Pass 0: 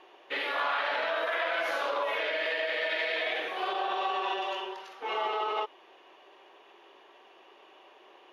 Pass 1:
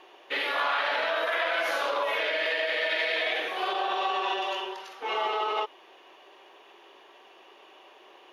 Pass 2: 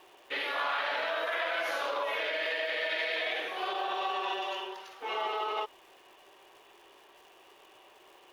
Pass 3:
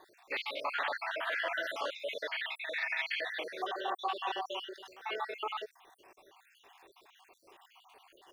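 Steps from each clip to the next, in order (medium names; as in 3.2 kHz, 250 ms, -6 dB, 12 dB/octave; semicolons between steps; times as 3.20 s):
treble shelf 4.2 kHz +6 dB; trim +2 dB
crackle 570 per s -48 dBFS; trim -4.5 dB
random holes in the spectrogram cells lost 60%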